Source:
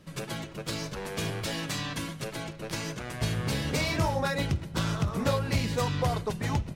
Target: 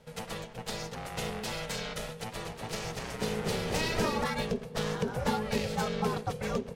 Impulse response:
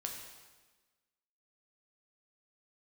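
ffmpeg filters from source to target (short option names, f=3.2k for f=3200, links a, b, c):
-filter_complex "[0:a]highpass=76,aeval=exprs='val(0)*sin(2*PI*320*n/s)':c=same,asettb=1/sr,asplit=3[a][b][c];[a]atrim=end=2.104[d];[b]atrim=start=2.1:end=4.24,asetpts=PTS-STARTPTS,afade=t=in:d=0.004:c=qsin,afade=t=out:st=2.136:d=0.004:c=qsin,asplit=8[e][f][g][h][i][j][k][l];[f]adelay=239,afreqshift=-49,volume=-5.5dB[m];[g]adelay=478,afreqshift=-98,volume=-10.7dB[n];[h]adelay=717,afreqshift=-147,volume=-15.9dB[o];[i]adelay=956,afreqshift=-196,volume=-21.1dB[p];[j]adelay=1195,afreqshift=-245,volume=-26.3dB[q];[k]adelay=1434,afreqshift=-294,volume=-31.5dB[r];[l]adelay=1673,afreqshift=-343,volume=-36.7dB[s];[e][m][n][o][p][q][r][s]amix=inputs=8:normalize=0,atrim=end_sample=94374[t];[c]atrim=start=4.236[u];[d][t]acrossfade=d=0.004:c1=hsin:c2=qsin[v];[v][u]acrossfade=d=0.004:c1=qsin:c2=hsin"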